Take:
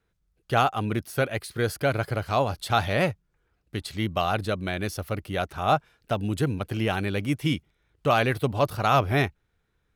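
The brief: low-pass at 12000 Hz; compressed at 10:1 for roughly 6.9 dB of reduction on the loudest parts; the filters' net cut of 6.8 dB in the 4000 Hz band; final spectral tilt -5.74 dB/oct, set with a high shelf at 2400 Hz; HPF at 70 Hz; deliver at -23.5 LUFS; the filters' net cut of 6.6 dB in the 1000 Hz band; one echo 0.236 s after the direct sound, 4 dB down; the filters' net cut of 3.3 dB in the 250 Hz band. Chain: HPF 70 Hz; LPF 12000 Hz; bell 250 Hz -4 dB; bell 1000 Hz -8.5 dB; high shelf 2400 Hz -5.5 dB; bell 4000 Hz -3.5 dB; compressor 10:1, threshold -28 dBFS; echo 0.236 s -4 dB; gain +10.5 dB

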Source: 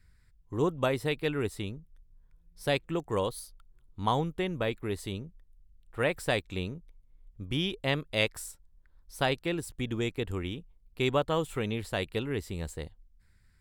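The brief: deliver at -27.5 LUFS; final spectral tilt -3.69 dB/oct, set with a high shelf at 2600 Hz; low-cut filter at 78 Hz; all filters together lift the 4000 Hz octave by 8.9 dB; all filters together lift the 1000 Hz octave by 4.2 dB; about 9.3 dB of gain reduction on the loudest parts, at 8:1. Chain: HPF 78 Hz; bell 1000 Hz +4 dB; high shelf 2600 Hz +7 dB; bell 4000 Hz +5.5 dB; compressor 8:1, threshold -26 dBFS; gain +5.5 dB

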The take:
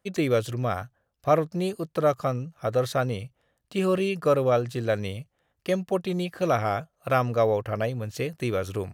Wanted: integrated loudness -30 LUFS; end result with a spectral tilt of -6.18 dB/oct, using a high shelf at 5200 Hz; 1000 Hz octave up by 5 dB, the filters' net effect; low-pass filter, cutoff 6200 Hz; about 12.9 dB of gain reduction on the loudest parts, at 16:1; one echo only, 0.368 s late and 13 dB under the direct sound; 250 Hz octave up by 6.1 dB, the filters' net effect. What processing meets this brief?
LPF 6200 Hz; bell 250 Hz +8.5 dB; bell 1000 Hz +6.5 dB; high shelf 5200 Hz +7.5 dB; compressor 16:1, threshold -25 dBFS; echo 0.368 s -13 dB; gain +1 dB

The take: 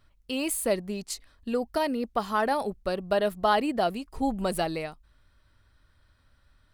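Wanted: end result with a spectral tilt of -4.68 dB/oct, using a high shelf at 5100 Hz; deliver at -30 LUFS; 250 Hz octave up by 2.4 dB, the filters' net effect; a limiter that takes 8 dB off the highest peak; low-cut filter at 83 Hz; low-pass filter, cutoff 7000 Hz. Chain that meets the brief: HPF 83 Hz; LPF 7000 Hz; bell 250 Hz +3 dB; high shelf 5100 Hz -7.5 dB; gain +0.5 dB; limiter -19 dBFS

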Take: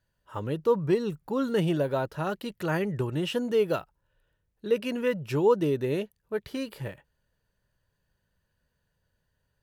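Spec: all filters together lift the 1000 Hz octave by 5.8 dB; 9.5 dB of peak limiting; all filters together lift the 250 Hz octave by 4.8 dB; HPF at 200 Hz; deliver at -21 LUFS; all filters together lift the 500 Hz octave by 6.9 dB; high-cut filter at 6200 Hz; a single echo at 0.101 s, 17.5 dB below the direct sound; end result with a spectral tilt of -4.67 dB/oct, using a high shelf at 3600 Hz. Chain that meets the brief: HPF 200 Hz; LPF 6200 Hz; bell 250 Hz +6 dB; bell 500 Hz +5.5 dB; bell 1000 Hz +5.5 dB; high shelf 3600 Hz -4.5 dB; limiter -14 dBFS; echo 0.101 s -17.5 dB; gain +4 dB

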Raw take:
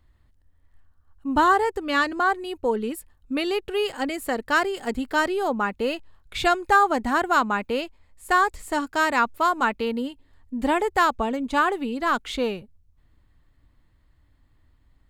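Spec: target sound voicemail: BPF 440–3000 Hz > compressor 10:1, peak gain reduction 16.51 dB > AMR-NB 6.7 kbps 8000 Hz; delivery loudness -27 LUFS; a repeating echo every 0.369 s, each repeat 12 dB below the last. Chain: BPF 440–3000 Hz; feedback echo 0.369 s, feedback 25%, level -12 dB; compressor 10:1, threshold -29 dBFS; gain +8.5 dB; AMR-NB 6.7 kbps 8000 Hz

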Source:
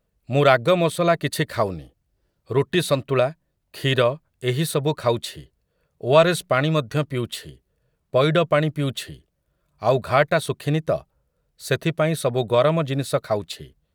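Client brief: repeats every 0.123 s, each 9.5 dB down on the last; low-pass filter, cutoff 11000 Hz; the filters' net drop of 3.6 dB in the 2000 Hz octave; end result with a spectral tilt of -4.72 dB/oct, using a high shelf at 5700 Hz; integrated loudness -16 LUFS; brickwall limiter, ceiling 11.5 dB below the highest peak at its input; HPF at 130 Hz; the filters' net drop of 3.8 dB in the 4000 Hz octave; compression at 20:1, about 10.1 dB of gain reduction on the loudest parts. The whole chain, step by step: HPF 130 Hz; LPF 11000 Hz; bell 2000 Hz -4.5 dB; bell 4000 Hz -5.5 dB; high shelf 5700 Hz +7.5 dB; compressor 20:1, threshold -20 dBFS; limiter -21 dBFS; feedback echo 0.123 s, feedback 33%, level -9.5 dB; gain +16 dB

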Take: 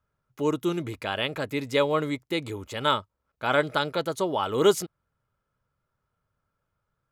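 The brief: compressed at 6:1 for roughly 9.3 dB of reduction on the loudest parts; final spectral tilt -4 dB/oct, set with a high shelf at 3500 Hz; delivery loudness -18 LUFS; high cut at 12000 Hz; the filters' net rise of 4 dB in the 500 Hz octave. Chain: LPF 12000 Hz; bell 500 Hz +5 dB; high shelf 3500 Hz -4 dB; compressor 6:1, threshold -21 dBFS; gain +10 dB

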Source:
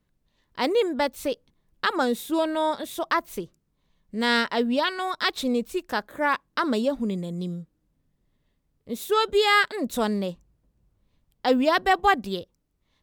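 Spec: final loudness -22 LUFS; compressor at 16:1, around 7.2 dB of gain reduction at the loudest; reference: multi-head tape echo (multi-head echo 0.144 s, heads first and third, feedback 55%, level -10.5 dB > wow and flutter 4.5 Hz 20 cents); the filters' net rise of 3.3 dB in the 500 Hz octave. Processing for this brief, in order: bell 500 Hz +4 dB; compressor 16:1, threshold -20 dBFS; multi-head echo 0.144 s, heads first and third, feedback 55%, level -10.5 dB; wow and flutter 4.5 Hz 20 cents; gain +5 dB

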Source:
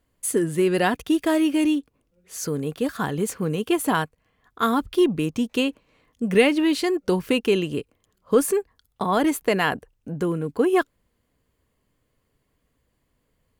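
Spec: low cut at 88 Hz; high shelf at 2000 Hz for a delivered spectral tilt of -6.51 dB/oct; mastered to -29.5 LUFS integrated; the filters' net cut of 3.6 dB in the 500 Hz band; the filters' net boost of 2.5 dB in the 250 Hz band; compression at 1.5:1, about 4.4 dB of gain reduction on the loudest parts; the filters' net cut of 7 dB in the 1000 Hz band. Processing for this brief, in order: HPF 88 Hz; bell 250 Hz +7 dB; bell 500 Hz -7.5 dB; bell 1000 Hz -5 dB; high shelf 2000 Hz -8 dB; compressor 1.5:1, threshold -27 dBFS; gain -2.5 dB

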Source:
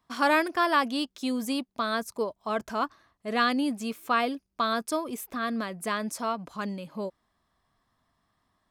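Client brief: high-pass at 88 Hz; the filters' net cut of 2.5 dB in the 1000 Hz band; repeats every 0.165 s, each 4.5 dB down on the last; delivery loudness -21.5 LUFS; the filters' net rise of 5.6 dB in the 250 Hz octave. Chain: HPF 88 Hz; bell 250 Hz +6.5 dB; bell 1000 Hz -3.5 dB; feedback echo 0.165 s, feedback 60%, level -4.5 dB; gain +4 dB

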